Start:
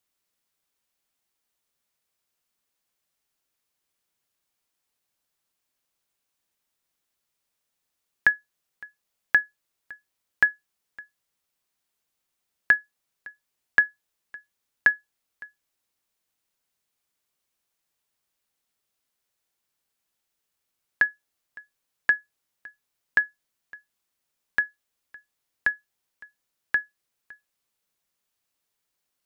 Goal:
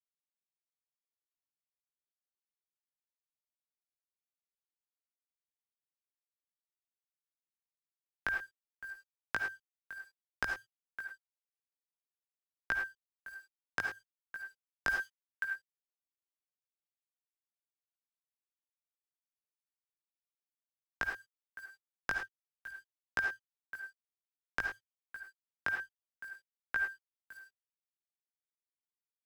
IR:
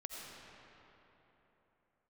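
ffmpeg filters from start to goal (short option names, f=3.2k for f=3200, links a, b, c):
-filter_complex "[0:a]asplit=3[a][b][c];[a]afade=t=out:st=8.34:d=0.02[d];[b]equalizer=f=120:w=0.58:g=8.5,afade=t=in:st=8.34:d=0.02,afade=t=out:st=8.84:d=0.02[e];[c]afade=t=in:st=8.84:d=0.02[f];[d][e][f]amix=inputs=3:normalize=0,asettb=1/sr,asplit=3[g][h][i];[g]atrim=end=22.144[j];[h]atrim=start=22.14:end=22.66,asetpts=PTS-STARTPTS,afade=t=in:d=0.004:c=qsin,afade=t=out:st=0.516:d=0.004:c=qsin,acrossover=split=370|3000[k][l][m];[l]acompressor=threshold=-58dB:ratio=4[n];[k][n][m]amix=inputs=3:normalize=0[o];[i]atrim=start=22.656[p];[j][o]acrossfade=d=0.004:c1=hsin:c2=qsin[q];[q][p]acrossfade=d=0.004:c1=qsin:c2=hsin,tremolo=f=7.2:d=0.58,asoftclip=type=tanh:threshold=-9.5dB,acompressor=threshold=-33dB:ratio=20,afreqshift=-110,acrusher=bits=9:mix=0:aa=0.000001,flanger=delay=16.5:depth=4.1:speed=0.56,asettb=1/sr,asplit=3[r][s][t];[r]atrim=end=14.894[u];[s]atrim=start=14.89:end=15.44,asetpts=PTS-STARTPTS,afade=t=in:d=0.004:c=qsin,afade=t=out:st=0.546:d=0.004:c=qsin,tiltshelf=f=650:g=-9[v];[t]atrim=start=15.436[w];[u][v]acrossfade=d=0.004:c1=hsin:c2=qsin[x];[x][w]acrossfade=d=0.004:c1=qsin:c2=hsin[y];[1:a]atrim=start_sample=2205,atrim=end_sample=6174,asetrate=52920,aresample=44100[z];[y][z]afir=irnorm=-1:irlink=0,volume=11.5dB"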